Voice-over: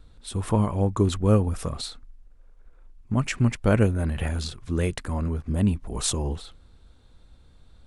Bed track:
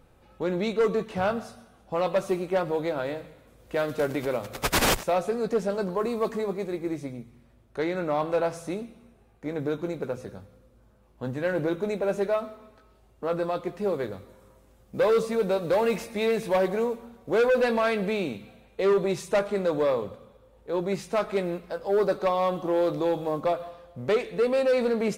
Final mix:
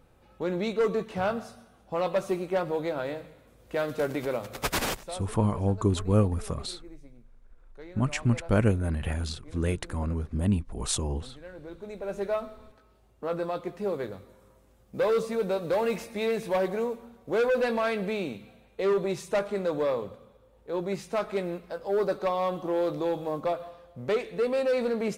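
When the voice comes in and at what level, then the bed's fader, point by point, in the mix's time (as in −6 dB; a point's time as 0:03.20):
4.85 s, −3.0 dB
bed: 0:04.64 −2 dB
0:05.29 −18 dB
0:11.58 −18 dB
0:12.32 −3 dB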